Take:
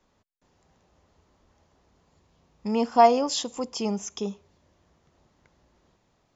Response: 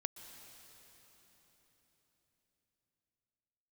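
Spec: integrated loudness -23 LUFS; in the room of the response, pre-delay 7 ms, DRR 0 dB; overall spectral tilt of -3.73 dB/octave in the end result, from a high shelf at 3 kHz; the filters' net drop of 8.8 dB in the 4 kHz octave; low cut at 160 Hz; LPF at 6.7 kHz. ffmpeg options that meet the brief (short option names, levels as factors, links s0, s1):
-filter_complex "[0:a]highpass=160,lowpass=6700,highshelf=f=3000:g=-5.5,equalizer=f=4000:t=o:g=-6,asplit=2[s0][s1];[1:a]atrim=start_sample=2205,adelay=7[s2];[s1][s2]afir=irnorm=-1:irlink=0,volume=1.19[s3];[s0][s3]amix=inputs=2:normalize=0,volume=0.841"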